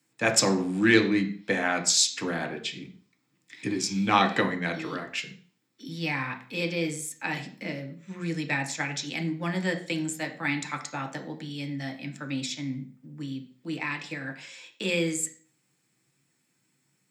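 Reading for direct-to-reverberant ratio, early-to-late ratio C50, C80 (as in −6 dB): 3.5 dB, 12.5 dB, 16.0 dB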